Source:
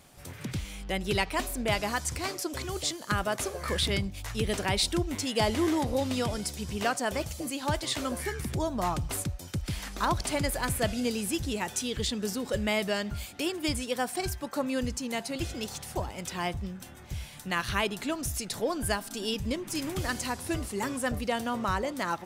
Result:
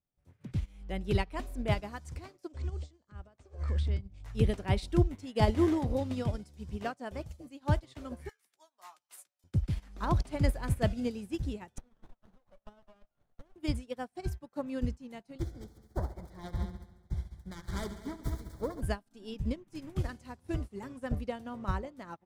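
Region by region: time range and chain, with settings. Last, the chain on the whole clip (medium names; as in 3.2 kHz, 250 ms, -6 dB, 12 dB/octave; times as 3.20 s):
2.52–4.25 s: Chebyshev low-pass 8.6 kHz, order 5 + compression 4:1, threshold -36 dBFS + peaking EQ 73 Hz +12 dB 0.24 oct
8.29–9.44 s: high-pass 930 Hz + tilt EQ +3 dB/octave + doubling 16 ms -9 dB
11.78–13.56 s: elliptic high-pass 580 Hz + compression 2.5:1, threshold -37 dBFS + sliding maximum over 17 samples
15.38–18.81 s: self-modulated delay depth 0.44 ms + Butterworth band-stop 2.7 kHz, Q 2.2 + multi-head delay 69 ms, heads all three, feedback 64%, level -12 dB
whole clip: tilt EQ -2.5 dB/octave; upward expansion 2.5:1, over -45 dBFS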